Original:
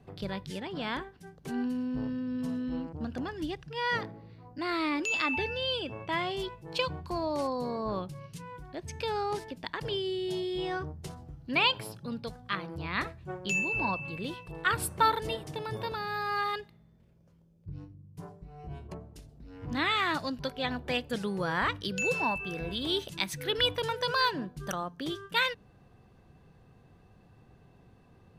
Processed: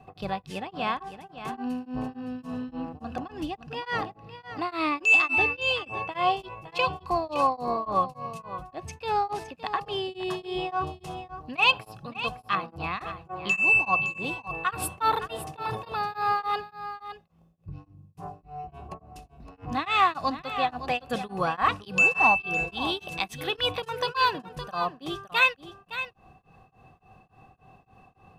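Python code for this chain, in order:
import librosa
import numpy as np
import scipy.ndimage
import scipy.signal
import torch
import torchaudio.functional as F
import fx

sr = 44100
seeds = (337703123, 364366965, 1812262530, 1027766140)

p1 = fx.small_body(x, sr, hz=(770.0, 1100.0, 2600.0), ring_ms=35, db=16)
p2 = 10.0 ** (-18.5 / 20.0) * np.tanh(p1 / 10.0 ** (-18.5 / 20.0))
p3 = p1 + (p2 * librosa.db_to_amplitude(-12.0))
p4 = p3 + 10.0 ** (-11.5 / 20.0) * np.pad(p3, (int(564 * sr / 1000.0), 0))[:len(p3)]
y = p4 * np.abs(np.cos(np.pi * 3.5 * np.arange(len(p4)) / sr))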